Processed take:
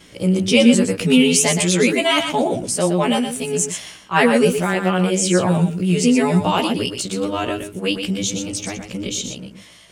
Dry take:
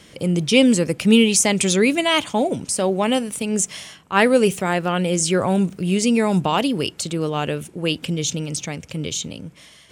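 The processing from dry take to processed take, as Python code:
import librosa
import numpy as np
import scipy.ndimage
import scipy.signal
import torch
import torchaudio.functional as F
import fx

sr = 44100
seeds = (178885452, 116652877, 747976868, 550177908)

y = fx.frame_reverse(x, sr, frame_ms=33.0)
y = y + 10.0 ** (-7.5 / 20.0) * np.pad(y, (int(120 * sr / 1000.0), 0))[:len(y)]
y = y * librosa.db_to_amplitude(4.0)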